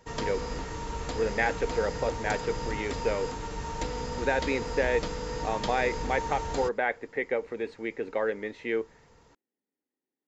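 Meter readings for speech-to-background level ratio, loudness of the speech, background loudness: 4.0 dB, -31.0 LUFS, -35.0 LUFS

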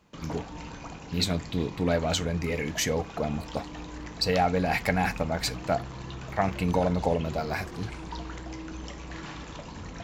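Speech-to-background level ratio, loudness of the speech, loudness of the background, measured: 11.5 dB, -29.0 LUFS, -40.5 LUFS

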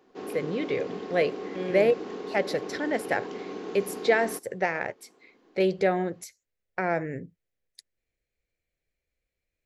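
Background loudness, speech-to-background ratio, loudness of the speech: -37.5 LUFS, 9.0 dB, -28.5 LUFS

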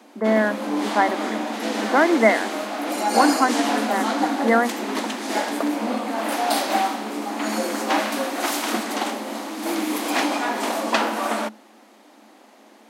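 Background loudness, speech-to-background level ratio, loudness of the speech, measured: -24.5 LUFS, 3.0 dB, -21.5 LUFS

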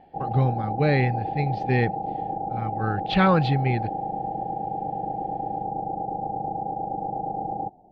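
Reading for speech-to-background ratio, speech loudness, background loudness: 5.5 dB, -24.5 LUFS, -30.0 LUFS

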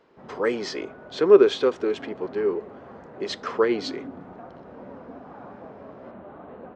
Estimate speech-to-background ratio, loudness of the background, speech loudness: 19.5 dB, -43.0 LUFS, -23.5 LUFS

